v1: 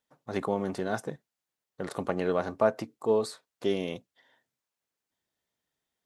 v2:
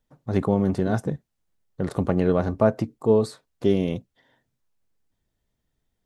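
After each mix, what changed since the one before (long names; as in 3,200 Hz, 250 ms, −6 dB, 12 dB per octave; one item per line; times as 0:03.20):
second voice +7.5 dB
master: remove high-pass filter 750 Hz 6 dB per octave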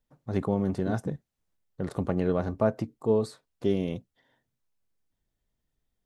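first voice −5.5 dB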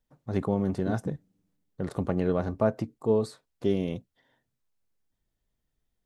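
reverb: on, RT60 1.6 s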